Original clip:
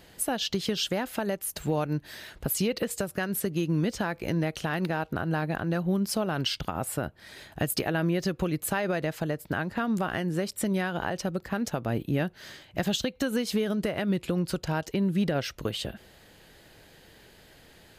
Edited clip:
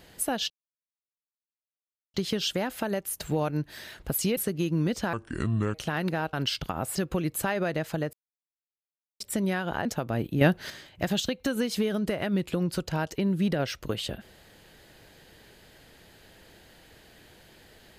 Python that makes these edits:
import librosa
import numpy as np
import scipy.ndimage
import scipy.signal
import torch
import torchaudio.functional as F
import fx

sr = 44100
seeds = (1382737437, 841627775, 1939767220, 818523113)

y = fx.edit(x, sr, fx.insert_silence(at_s=0.5, length_s=1.64),
    fx.cut(start_s=2.73, length_s=0.61),
    fx.speed_span(start_s=4.1, length_s=0.41, speed=0.67),
    fx.cut(start_s=5.1, length_s=1.22),
    fx.cut(start_s=6.94, length_s=1.29),
    fx.silence(start_s=9.41, length_s=1.07),
    fx.cut(start_s=11.13, length_s=0.48),
    fx.clip_gain(start_s=12.17, length_s=0.29, db=8.0), tone=tone)